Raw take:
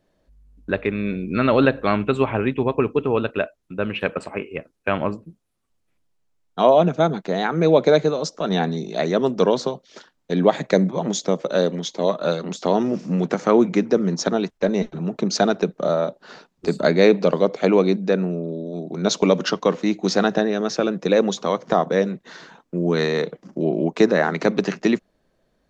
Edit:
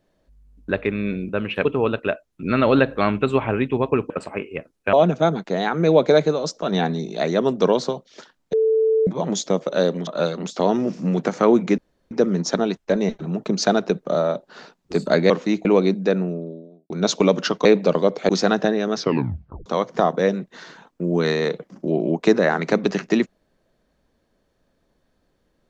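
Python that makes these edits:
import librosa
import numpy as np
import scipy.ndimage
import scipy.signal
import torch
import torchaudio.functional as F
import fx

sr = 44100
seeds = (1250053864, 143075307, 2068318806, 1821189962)

y = fx.studio_fade_out(x, sr, start_s=18.17, length_s=0.75)
y = fx.edit(y, sr, fx.swap(start_s=1.29, length_s=1.67, other_s=3.74, other_length_s=0.36),
    fx.cut(start_s=4.93, length_s=1.78),
    fx.bleep(start_s=10.31, length_s=0.54, hz=442.0, db=-14.5),
    fx.cut(start_s=11.85, length_s=0.28),
    fx.insert_room_tone(at_s=13.84, length_s=0.33),
    fx.swap(start_s=17.03, length_s=0.64, other_s=19.67, other_length_s=0.35),
    fx.tape_stop(start_s=20.69, length_s=0.7), tone=tone)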